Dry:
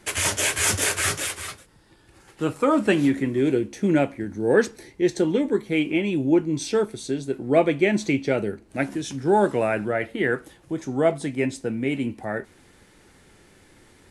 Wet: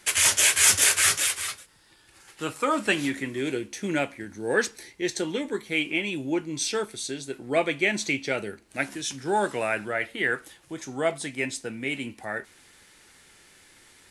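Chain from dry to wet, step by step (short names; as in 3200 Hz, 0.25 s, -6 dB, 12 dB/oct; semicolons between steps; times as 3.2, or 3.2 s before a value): tilt shelf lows -7.5 dB; gain -2.5 dB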